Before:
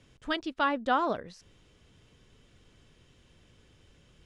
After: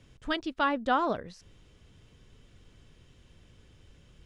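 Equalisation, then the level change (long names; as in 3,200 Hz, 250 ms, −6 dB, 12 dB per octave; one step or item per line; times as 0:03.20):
low-shelf EQ 130 Hz +6.5 dB
0.0 dB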